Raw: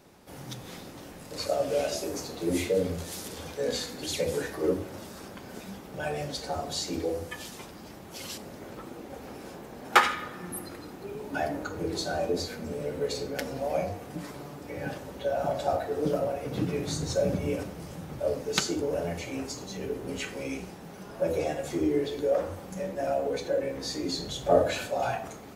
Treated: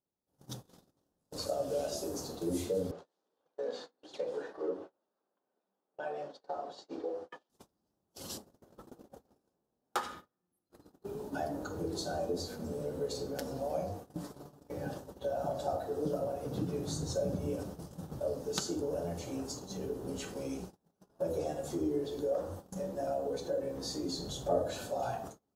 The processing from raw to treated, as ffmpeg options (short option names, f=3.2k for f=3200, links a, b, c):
-filter_complex "[0:a]asettb=1/sr,asplit=3[a][b][c];[a]atrim=end=2.914[d];[b]atrim=start=2.91:end=7.5,asetpts=PTS-STARTPTS,afade=t=in:d=0.004:c=qsin,afade=t=out:st=4.586:d=0.004:c=qsin,highpass=430,lowpass=2.6k[e];[c]atrim=start=7.496[f];[d][e]acrossfade=d=0.004:c1=hsin:c2=qsin[g];[g][f]acrossfade=d=0.004:c1=qsin:c2=hsin,asplit=2[h][i];[h]atrim=end=10.7,asetpts=PTS-STARTPTS,afade=t=out:st=8.95:d=1.75:silence=0.251189[j];[i]atrim=start=10.7,asetpts=PTS-STARTPTS,afade=t=in:d=0.004:c=hsin:silence=0.251189[k];[j][k]concat=n=2:v=0:a=1,agate=range=-36dB:threshold=-39dB:ratio=16:detection=peak,equalizer=f=2.2k:t=o:w=0.84:g=-15,acompressor=threshold=-41dB:ratio=1.5"